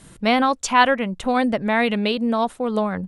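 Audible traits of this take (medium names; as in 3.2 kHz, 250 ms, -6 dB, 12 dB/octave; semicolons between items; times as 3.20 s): noise floor -47 dBFS; spectral tilt -4.5 dB/octave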